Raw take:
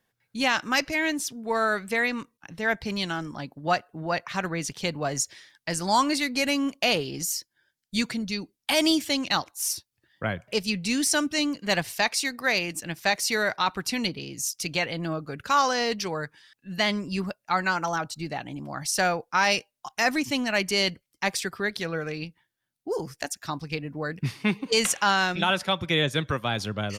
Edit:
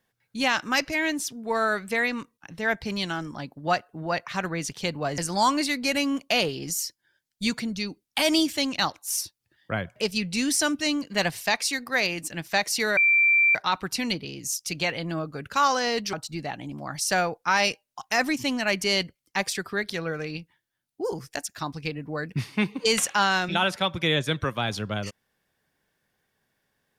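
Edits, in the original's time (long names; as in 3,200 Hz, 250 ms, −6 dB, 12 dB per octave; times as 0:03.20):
0:05.18–0:05.70: remove
0:13.49: insert tone 2,350 Hz −16 dBFS 0.58 s
0:16.07–0:18.00: remove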